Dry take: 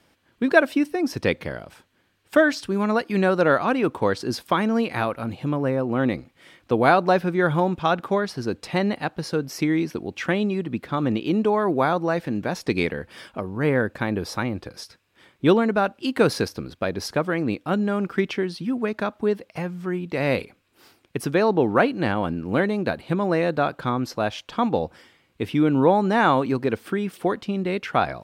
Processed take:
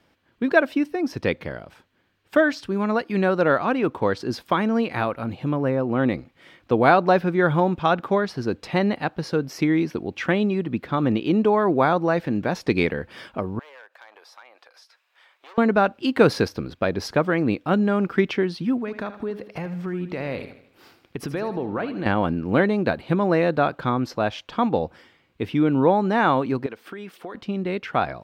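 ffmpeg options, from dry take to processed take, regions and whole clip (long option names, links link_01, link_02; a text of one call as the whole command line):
ffmpeg -i in.wav -filter_complex "[0:a]asettb=1/sr,asplit=3[link_01][link_02][link_03];[link_01]atrim=end=13.594[link_04];[link_02]atrim=start=13.59:end=15.58,asetpts=PTS-STARTPTS,afade=type=in:duration=0.004:curve=qsin,afade=type=out:start_time=1.986:duration=0.004:curve=qsin,asoftclip=type=hard:threshold=-18.5dB,highpass=frequency=660:width=0.5412,highpass=frequency=660:width=1.3066,acompressor=threshold=-54dB:ratio=2.5:attack=3.2:release=140:knee=1:detection=peak[link_05];[link_03]atrim=start=15.576[link_06];[link_04][link_05]acrossfade=duration=0.004:curve1=hsin:curve2=qsin[link_07];[link_07][link_06]acrossfade=duration=0.004:curve1=qsin:curve2=hsin,asettb=1/sr,asplit=3[link_08][link_09][link_10];[link_08]atrim=end=18.794[link_11];[link_09]atrim=start=18.79:end=22.06,asetpts=PTS-STARTPTS,afade=type=in:duration=0.004:curve=qsin,afade=type=out:start_time=3.266:duration=0.004:curve=qsin,acompressor=threshold=-30dB:ratio=3:attack=3.2:release=140:knee=1:detection=peak,aecho=1:1:78|156|234|312|390:0.251|0.118|0.0555|0.0261|0.0123,atrim=end_sample=144207[link_12];[link_10]atrim=start=22.056[link_13];[link_11][link_12]acrossfade=duration=0.004:curve1=hsin:curve2=qsin[link_14];[link_14][link_13]acrossfade=duration=0.004:curve1=qsin:curve2=hsin,asettb=1/sr,asplit=3[link_15][link_16][link_17];[link_15]atrim=end=26.664[link_18];[link_16]atrim=start=26.66:end=27.35,asetpts=PTS-STARTPTS,afade=type=in:duration=0.004:curve=qsin,afade=type=out:start_time=0.686:duration=0.004:curve=qsin,highpass=frequency=510:poles=1,acompressor=threshold=-30dB:ratio=5:attack=3.2:release=140:knee=1:detection=peak[link_19];[link_17]atrim=start=27.346[link_20];[link_18][link_19]acrossfade=duration=0.004:curve1=hsin:curve2=qsin[link_21];[link_21][link_20]acrossfade=duration=0.004:curve1=qsin:curve2=hsin,equalizer=frequency=10000:width=0.66:gain=-9.5,dynaudnorm=framelen=590:gausssize=17:maxgain=11.5dB,volume=-1dB" out.wav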